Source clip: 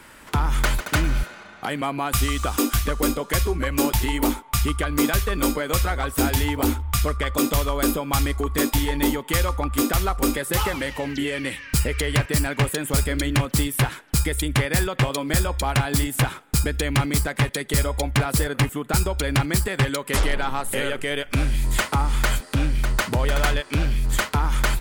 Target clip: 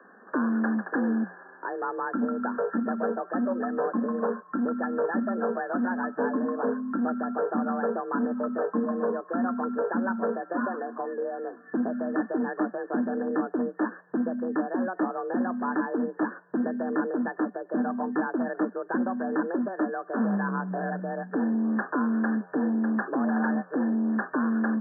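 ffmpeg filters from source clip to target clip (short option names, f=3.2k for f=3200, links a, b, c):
-af "afreqshift=180,aeval=exprs='clip(val(0),-1,0.106)':c=same,afftfilt=real='re*between(b*sr/4096,140,1800)':imag='im*between(b*sr/4096,140,1800)':win_size=4096:overlap=0.75,volume=-4.5dB"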